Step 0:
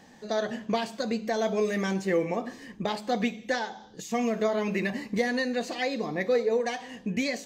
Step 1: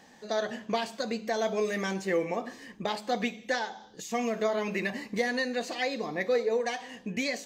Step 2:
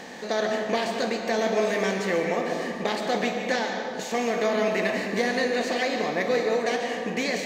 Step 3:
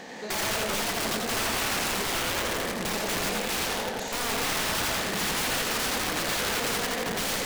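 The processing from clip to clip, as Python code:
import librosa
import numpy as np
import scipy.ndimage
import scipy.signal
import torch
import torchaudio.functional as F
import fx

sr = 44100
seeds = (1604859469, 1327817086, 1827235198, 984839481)

y1 = fx.low_shelf(x, sr, hz=290.0, db=-7.5)
y2 = fx.bin_compress(y1, sr, power=0.6)
y2 = fx.rev_freeverb(y2, sr, rt60_s=2.2, hf_ratio=0.35, predelay_ms=95, drr_db=4.0)
y3 = (np.mod(10.0 ** (23.0 / 20.0) * y2 + 1.0, 2.0) - 1.0) / 10.0 ** (23.0 / 20.0)
y3 = fx.echo_warbled(y3, sr, ms=85, feedback_pct=58, rate_hz=2.8, cents=156, wet_db=-4.0)
y3 = y3 * 10.0 ** (-2.0 / 20.0)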